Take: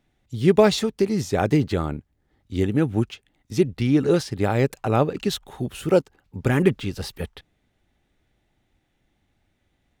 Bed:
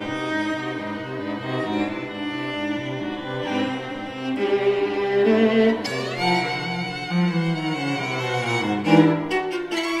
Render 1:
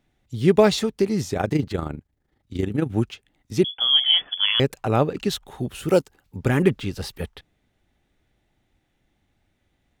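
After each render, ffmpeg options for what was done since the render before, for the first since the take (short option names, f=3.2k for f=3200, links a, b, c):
-filter_complex "[0:a]asettb=1/sr,asplit=3[a][b][c];[a]atrim=end=1.334[d];[b]atrim=start=1.33:end=2.92,asetpts=PTS-STARTPTS,afade=t=in:d=0.004:c=qsin,afade=t=out:st=1.586:d=0.004:c=qsin,tremolo=f=26:d=0.667[e];[c]atrim=start=2.916[f];[d][e]acrossfade=d=0.004:c1=hsin:c2=qsin[g];[g][f]acrossfade=d=0.004:c1=qsin:c2=hsin,asettb=1/sr,asplit=3[h][i][j];[h]atrim=end=3.644[k];[i]atrim=start=3.64:end=4.6,asetpts=PTS-STARTPTS,afade=t=in:d=0.004:c=qsin,afade=t=out:st=0.956:d=0.004:c=qsin,lowpass=f=3k:t=q:w=0.5098,lowpass=f=3k:t=q:w=0.6013,lowpass=f=3k:t=q:w=0.9,lowpass=f=3k:t=q:w=2.563,afreqshift=-3500[l];[j]atrim=start=4.596[m];[k][l]acrossfade=d=0.004:c1=hsin:c2=qsin[n];[n][m]acrossfade=d=0.004:c1=qsin:c2=hsin,asettb=1/sr,asplit=3[o][p][q];[o]atrim=end=5.884[r];[p]atrim=start=5.88:end=6.38,asetpts=PTS-STARTPTS,afade=t=in:d=0.004:c=qsin,afade=t=out:st=0.496:d=0.004:c=qsin,aemphasis=mode=production:type=cd[s];[q]atrim=start=6.376[t];[r][s]acrossfade=d=0.004:c1=hsin:c2=qsin[u];[u][t]acrossfade=d=0.004:c1=qsin:c2=hsin"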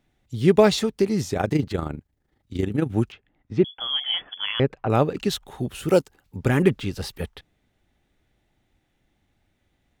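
-filter_complex "[0:a]asettb=1/sr,asplit=3[a][b][c];[a]atrim=end=3.124[d];[b]atrim=start=3.12:end=4.9,asetpts=PTS-STARTPTS,afade=t=in:d=0.004:c=qsin,afade=t=out:st=1.776:d=0.004:c=qsin,lowpass=2.1k[e];[c]atrim=start=4.896[f];[d][e]acrossfade=d=0.004:c1=hsin:c2=qsin[g];[g][f]acrossfade=d=0.004:c1=qsin:c2=hsin"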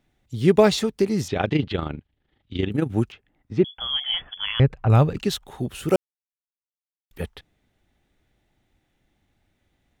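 -filter_complex "[0:a]asettb=1/sr,asplit=3[a][b][c];[a]atrim=end=1.284[d];[b]atrim=start=1.28:end=2.71,asetpts=PTS-STARTPTS,afade=t=in:d=0.004:c=qsin,afade=t=out:st=1.426:d=0.004:c=qsin,lowpass=f=3.2k:t=q:w=3.2[e];[c]atrim=start=2.706[f];[d][e]acrossfade=d=0.004:c1=hsin:c2=qsin[g];[g][f]acrossfade=d=0.004:c1=qsin:c2=hsin,asplit=3[h][i][j];[h]afade=t=out:st=3.73:d=0.02[k];[i]asubboost=boost=6:cutoff=130,afade=t=in:st=3.73:d=0.02,afade=t=out:st=5.17:d=0.02[l];[j]afade=t=in:st=5.17:d=0.02[m];[k][l][m]amix=inputs=3:normalize=0,asplit=3[n][o][p];[n]atrim=end=5.96,asetpts=PTS-STARTPTS,afade=t=out:st=5.956:d=0.004:c=hsin[q];[o]atrim=start=5.96:end=7.11,asetpts=PTS-STARTPTS,volume=0[r];[p]atrim=start=7.11,asetpts=PTS-STARTPTS,afade=t=in:d=0.004:c=hsin[s];[q][r][s]concat=n=3:v=0:a=1"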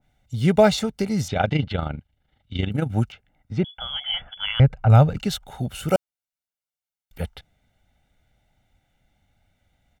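-af "aecho=1:1:1.4:0.62,adynamicequalizer=threshold=0.0178:dfrequency=1900:dqfactor=0.7:tfrequency=1900:tqfactor=0.7:attack=5:release=100:ratio=0.375:range=2.5:mode=cutabove:tftype=highshelf"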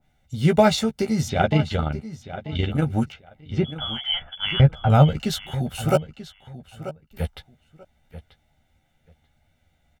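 -filter_complex "[0:a]asplit=2[a][b];[b]adelay=13,volume=-5.5dB[c];[a][c]amix=inputs=2:normalize=0,asplit=2[d][e];[e]adelay=937,lowpass=f=4.7k:p=1,volume=-13.5dB,asplit=2[f][g];[g]adelay=937,lowpass=f=4.7k:p=1,volume=0.18[h];[d][f][h]amix=inputs=3:normalize=0"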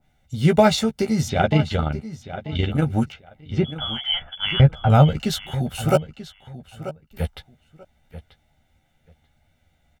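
-af "volume=1.5dB,alimiter=limit=-3dB:level=0:latency=1"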